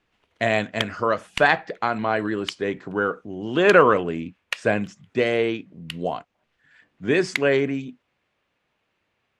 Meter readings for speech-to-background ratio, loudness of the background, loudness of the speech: 10.0 dB, -33.0 LUFS, -23.0 LUFS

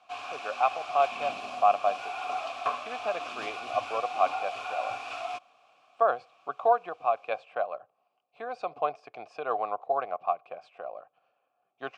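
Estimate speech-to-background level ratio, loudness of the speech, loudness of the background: 5.5 dB, -30.5 LUFS, -36.0 LUFS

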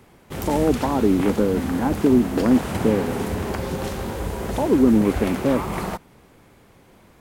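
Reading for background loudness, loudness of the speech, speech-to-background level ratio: -28.5 LUFS, -21.0 LUFS, 7.5 dB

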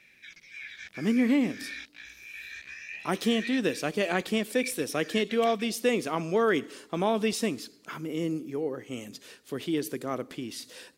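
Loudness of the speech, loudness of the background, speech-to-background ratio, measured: -29.0 LUFS, -42.0 LUFS, 13.0 dB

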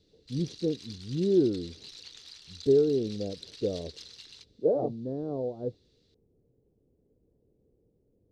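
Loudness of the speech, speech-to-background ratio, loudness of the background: -30.0 LUFS, 16.0 dB, -46.0 LUFS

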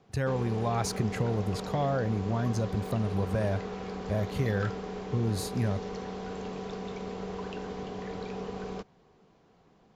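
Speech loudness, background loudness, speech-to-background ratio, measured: -31.5 LUFS, -38.0 LUFS, 6.5 dB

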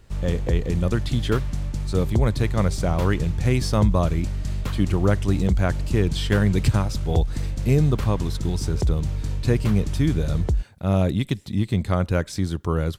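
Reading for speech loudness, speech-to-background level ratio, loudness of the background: -24.0 LUFS, 4.0 dB, -28.0 LUFS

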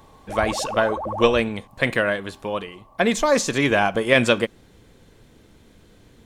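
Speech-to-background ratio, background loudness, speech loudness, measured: 9.0 dB, -30.5 LUFS, -21.5 LUFS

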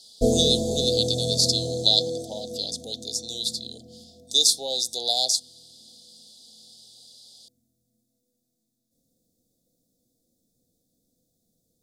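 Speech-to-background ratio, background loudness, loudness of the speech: 4.5 dB, -27.5 LUFS, -23.0 LUFS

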